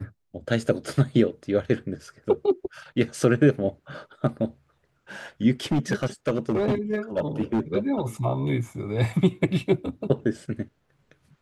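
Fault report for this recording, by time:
5.71–7.6 clipped -18.5 dBFS

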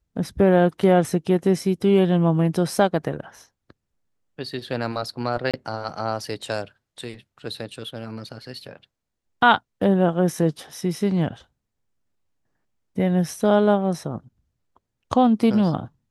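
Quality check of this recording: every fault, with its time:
5.51–5.54 gap 26 ms

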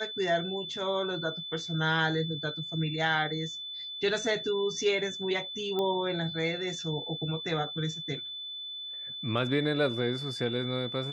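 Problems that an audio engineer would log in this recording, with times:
tone 3500 Hz -37 dBFS
5.79 pop -20 dBFS

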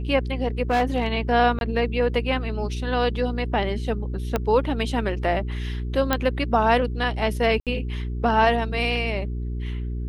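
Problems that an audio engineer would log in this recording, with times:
hum 60 Hz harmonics 7 -28 dBFS
0.7–1.07 clipped -16 dBFS
1.59–1.61 gap 21 ms
4.36 pop -9 dBFS
6.13 pop -6 dBFS
7.6–7.67 gap 67 ms

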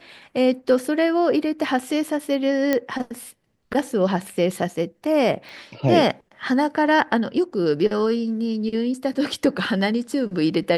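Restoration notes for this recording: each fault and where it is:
2.73 pop -7 dBFS
5.49 pop

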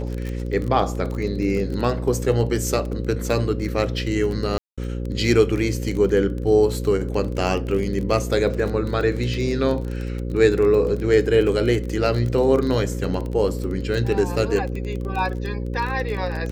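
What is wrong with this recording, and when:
buzz 60 Hz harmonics 9 -27 dBFS
crackle 21/s -26 dBFS
4.58–4.78 gap 0.196 s

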